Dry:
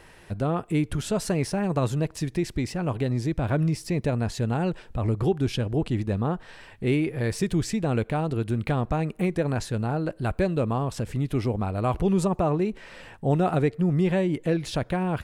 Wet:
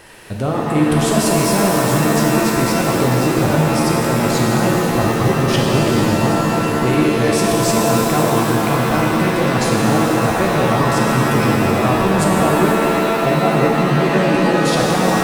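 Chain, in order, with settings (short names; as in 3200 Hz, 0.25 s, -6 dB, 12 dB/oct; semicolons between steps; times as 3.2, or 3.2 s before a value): high shelf 5800 Hz +6 dB; limiter -19 dBFS, peak gain reduction 9 dB; low shelf 79 Hz -11 dB; shimmer reverb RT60 3.6 s, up +7 st, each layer -2 dB, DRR -2.5 dB; gain +7.5 dB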